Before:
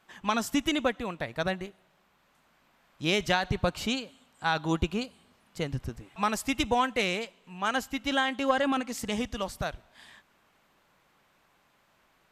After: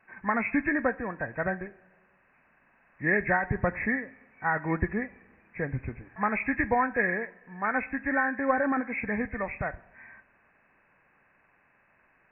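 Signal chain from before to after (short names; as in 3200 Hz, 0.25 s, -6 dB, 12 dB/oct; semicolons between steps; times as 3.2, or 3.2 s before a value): nonlinear frequency compression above 1500 Hz 4:1; two-slope reverb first 0.47 s, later 2.2 s, from -18 dB, DRR 15 dB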